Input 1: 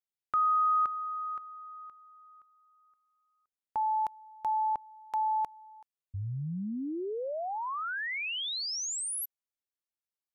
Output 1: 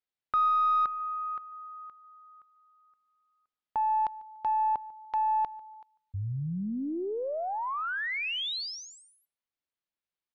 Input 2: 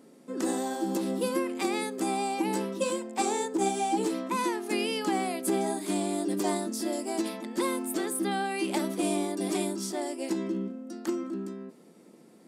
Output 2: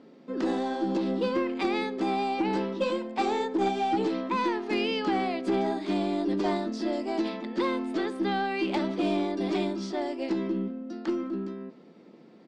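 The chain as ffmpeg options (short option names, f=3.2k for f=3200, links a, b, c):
-filter_complex "[0:a]lowpass=f=4.5k:w=0.5412,lowpass=f=4.5k:w=1.3066,aeval=exprs='0.168*(cos(1*acos(clip(val(0)/0.168,-1,1)))-cos(1*PI/2))+0.00188*(cos(4*acos(clip(val(0)/0.168,-1,1)))-cos(4*PI/2))+0.0168*(cos(5*acos(clip(val(0)/0.168,-1,1)))-cos(5*PI/2))+0.00299*(cos(6*acos(clip(val(0)/0.168,-1,1)))-cos(6*PI/2))+0.00473*(cos(7*acos(clip(val(0)/0.168,-1,1)))-cos(7*PI/2))':c=same,asplit=2[a][b];[b]adelay=146,lowpass=f=3.5k:p=1,volume=-21.5dB,asplit=2[c][d];[d]adelay=146,lowpass=f=3.5k:p=1,volume=0.29[e];[a][c][e]amix=inputs=3:normalize=0"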